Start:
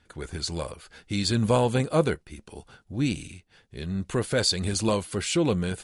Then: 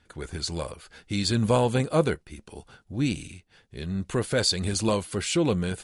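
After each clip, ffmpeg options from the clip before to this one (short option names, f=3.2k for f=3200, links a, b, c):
-af anull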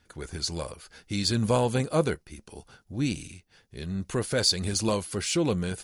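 -af "aexciter=amount=1.3:drive=7.2:freq=4.8k,volume=-2dB"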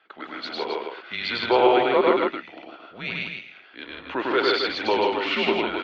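-af "highpass=f=530:t=q:w=0.5412,highpass=f=530:t=q:w=1.307,lowpass=f=3.5k:t=q:w=0.5176,lowpass=f=3.5k:t=q:w=0.7071,lowpass=f=3.5k:t=q:w=1.932,afreqshift=-120,aecho=1:1:102|154.5|265.3:0.891|0.708|0.501,volume=8dB"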